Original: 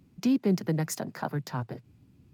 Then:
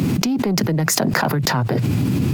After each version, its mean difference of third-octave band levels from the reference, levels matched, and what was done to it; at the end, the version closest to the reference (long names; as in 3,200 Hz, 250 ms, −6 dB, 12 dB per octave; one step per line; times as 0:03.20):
12.0 dB: high-pass filter 100 Hz 24 dB per octave
soft clipping −20 dBFS, distortion −17 dB
envelope flattener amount 100%
level +5.5 dB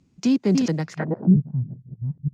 7.5 dB: delay that plays each chunk backwards 456 ms, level −2 dB
low-pass filter sweep 6,800 Hz → 150 Hz, 0:00.82–0:01.36
expander for the loud parts 1.5 to 1, over −36 dBFS
level +7 dB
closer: second